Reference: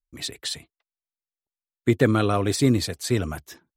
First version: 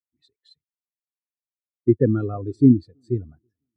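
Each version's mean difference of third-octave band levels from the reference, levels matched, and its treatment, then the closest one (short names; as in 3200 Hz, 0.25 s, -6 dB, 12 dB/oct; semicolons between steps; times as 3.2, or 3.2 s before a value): 18.5 dB: on a send: dark delay 0.327 s, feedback 60%, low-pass 2900 Hz, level -19.5 dB; on the sum: spectral expander 2.5:1; gain +1.5 dB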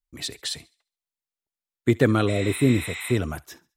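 2.0 dB: spectral repair 2.3–3.09, 690–8300 Hz after; thinning echo 69 ms, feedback 38%, high-pass 970 Hz, level -22 dB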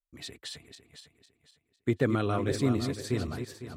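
4.5 dB: regenerating reverse delay 0.252 s, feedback 53%, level -7.5 dB; high shelf 4400 Hz -7 dB; gain -7.5 dB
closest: second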